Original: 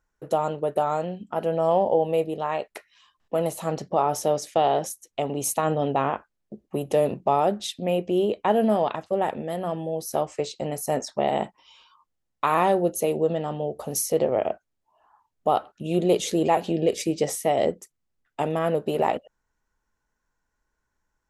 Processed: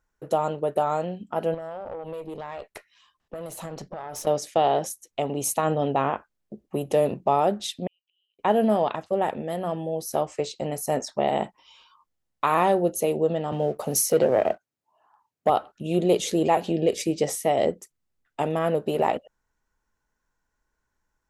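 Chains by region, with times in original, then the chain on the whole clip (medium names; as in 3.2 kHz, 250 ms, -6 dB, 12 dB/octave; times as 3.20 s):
1.54–4.27 s: compression 20:1, threshold -27 dBFS + valve stage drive 26 dB, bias 0.45
7.87–8.39 s: ladder band-pass 3.1 kHz, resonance 85% + inverted gate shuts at -43 dBFS, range -35 dB
13.52–15.50 s: high-pass 100 Hz 24 dB/octave + waveshaping leveller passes 1 + band-stop 3.4 kHz, Q 29
whole clip: none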